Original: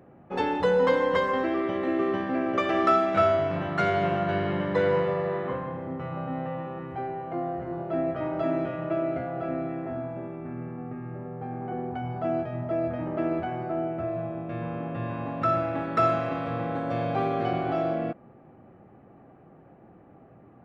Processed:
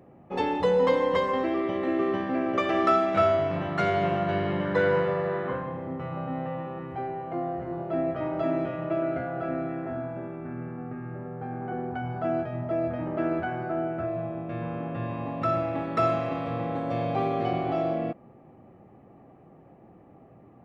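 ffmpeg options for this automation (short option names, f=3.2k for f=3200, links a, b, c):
-af "asetnsamples=n=441:p=0,asendcmd='1.82 equalizer g -3.5;4.65 equalizer g 6.5;5.62 equalizer g -2;9.02 equalizer g 7;12.47 equalizer g 0.5;13.2 equalizer g 9;14.06 equalizer g -1;15.06 equalizer g -9.5',equalizer=f=1.5k:t=o:w=0.24:g=-10"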